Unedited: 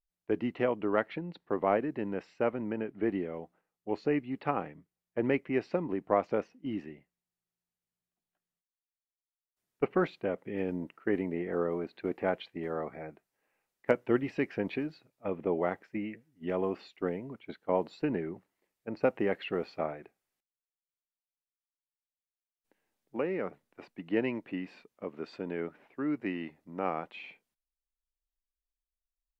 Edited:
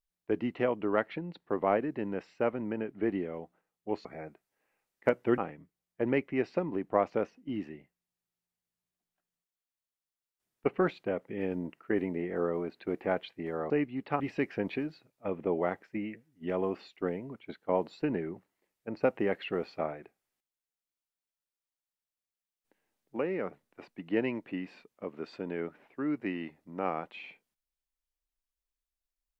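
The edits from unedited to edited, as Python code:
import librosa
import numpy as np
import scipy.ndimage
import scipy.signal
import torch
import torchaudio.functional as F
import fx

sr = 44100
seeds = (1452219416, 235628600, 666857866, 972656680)

y = fx.edit(x, sr, fx.swap(start_s=4.05, length_s=0.5, other_s=12.87, other_length_s=1.33), tone=tone)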